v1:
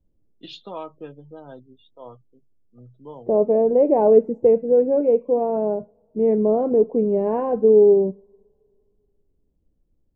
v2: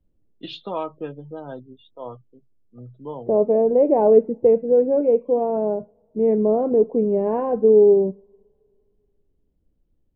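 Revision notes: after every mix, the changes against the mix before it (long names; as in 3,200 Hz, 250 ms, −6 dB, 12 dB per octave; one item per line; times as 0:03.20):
first voice +6.0 dB
master: add low-pass filter 3,700 Hz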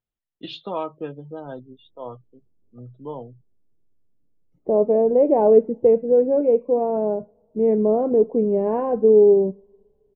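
second voice: entry +1.40 s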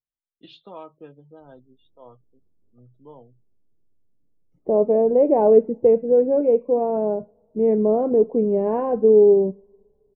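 first voice −11.5 dB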